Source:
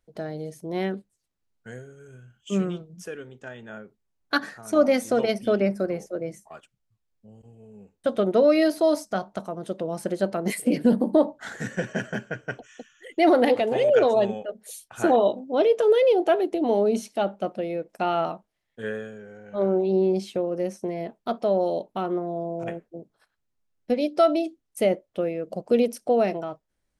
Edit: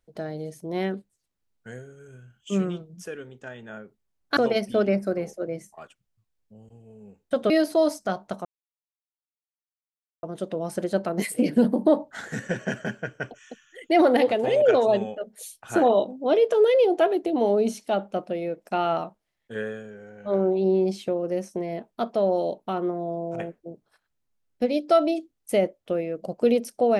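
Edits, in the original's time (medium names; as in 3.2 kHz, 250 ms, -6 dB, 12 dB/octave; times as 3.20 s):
4.37–5.10 s: delete
8.23–8.56 s: delete
9.51 s: insert silence 1.78 s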